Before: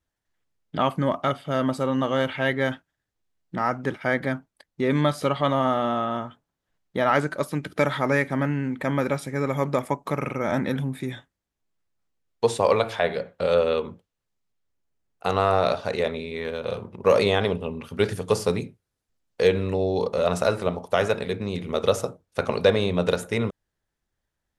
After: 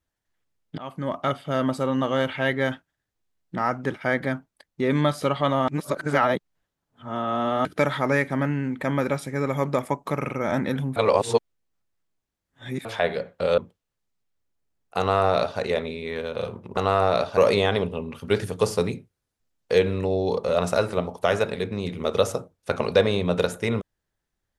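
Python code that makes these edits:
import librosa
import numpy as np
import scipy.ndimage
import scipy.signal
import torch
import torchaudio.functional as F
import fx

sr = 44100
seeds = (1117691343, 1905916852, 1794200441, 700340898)

y = fx.edit(x, sr, fx.fade_in_from(start_s=0.78, length_s=0.54, floor_db=-21.5),
    fx.reverse_span(start_s=5.68, length_s=1.97),
    fx.reverse_span(start_s=10.96, length_s=1.89),
    fx.cut(start_s=13.58, length_s=0.29),
    fx.duplicate(start_s=15.28, length_s=0.6, to_s=17.06), tone=tone)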